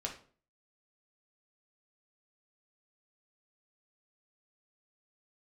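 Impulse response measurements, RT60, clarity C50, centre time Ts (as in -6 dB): 0.45 s, 9.0 dB, 17 ms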